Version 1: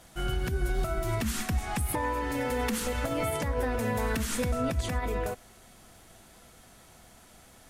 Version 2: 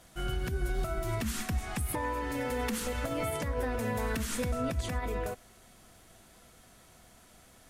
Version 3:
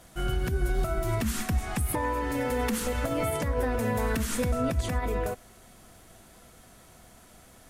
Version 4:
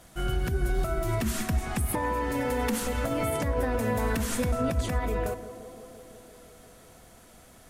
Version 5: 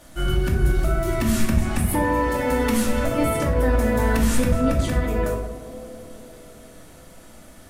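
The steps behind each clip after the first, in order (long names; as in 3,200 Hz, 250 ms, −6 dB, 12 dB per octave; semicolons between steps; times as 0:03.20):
notch filter 840 Hz, Q 17; level −3 dB
parametric band 3,700 Hz −3 dB 2.5 octaves; level +5 dB
tape delay 172 ms, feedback 88%, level −11 dB, low-pass 1,200 Hz
convolution reverb RT60 0.55 s, pre-delay 3 ms, DRR −0.5 dB; level +2.5 dB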